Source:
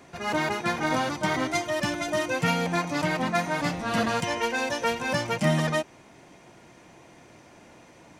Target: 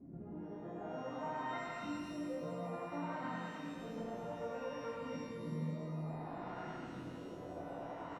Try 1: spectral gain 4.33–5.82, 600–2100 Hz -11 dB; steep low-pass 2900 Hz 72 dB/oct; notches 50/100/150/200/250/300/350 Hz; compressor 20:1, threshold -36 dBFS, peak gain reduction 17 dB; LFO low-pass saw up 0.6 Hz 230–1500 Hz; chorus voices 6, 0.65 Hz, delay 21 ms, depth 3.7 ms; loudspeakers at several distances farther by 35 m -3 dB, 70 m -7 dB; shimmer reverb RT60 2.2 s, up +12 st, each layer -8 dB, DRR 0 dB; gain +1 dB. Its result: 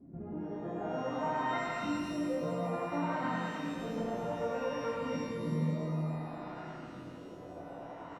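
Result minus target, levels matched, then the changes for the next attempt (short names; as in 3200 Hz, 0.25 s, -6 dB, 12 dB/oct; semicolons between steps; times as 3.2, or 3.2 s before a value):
compressor: peak gain reduction -7.5 dB
change: compressor 20:1, threshold -44 dBFS, peak gain reduction 24.5 dB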